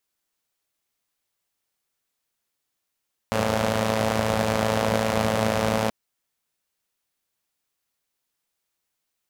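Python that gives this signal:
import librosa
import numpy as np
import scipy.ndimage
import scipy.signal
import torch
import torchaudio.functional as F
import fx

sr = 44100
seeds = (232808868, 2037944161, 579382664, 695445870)

y = fx.engine_four(sr, seeds[0], length_s=2.58, rpm=3300, resonances_hz=(97.0, 200.0, 520.0))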